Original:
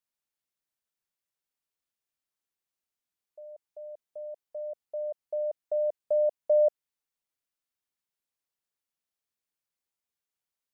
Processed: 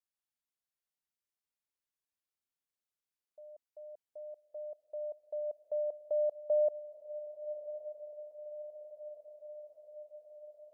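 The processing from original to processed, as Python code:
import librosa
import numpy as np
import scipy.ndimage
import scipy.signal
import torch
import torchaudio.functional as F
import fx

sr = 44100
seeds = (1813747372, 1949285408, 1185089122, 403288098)

y = fx.vibrato(x, sr, rate_hz=0.31, depth_cents=7.2)
y = fx.echo_diffused(y, sr, ms=1161, feedback_pct=66, wet_db=-11)
y = F.gain(torch.from_numpy(y), -6.5).numpy()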